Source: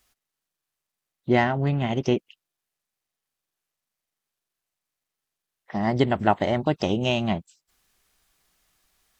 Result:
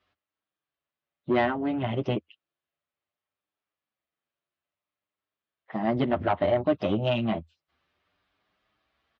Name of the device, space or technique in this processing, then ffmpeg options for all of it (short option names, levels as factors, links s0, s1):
barber-pole flanger into a guitar amplifier: -filter_complex "[0:a]asplit=2[s0][s1];[s1]adelay=7.9,afreqshift=0.61[s2];[s0][s2]amix=inputs=2:normalize=1,asoftclip=type=tanh:threshold=0.112,highpass=77,equalizer=f=81:t=q:w=4:g=9,equalizer=f=300:t=q:w=4:g=4,equalizer=f=590:t=q:w=4:g=6,equalizer=f=1200:t=q:w=4:g=4,lowpass=f=3600:w=0.5412,lowpass=f=3600:w=1.3066"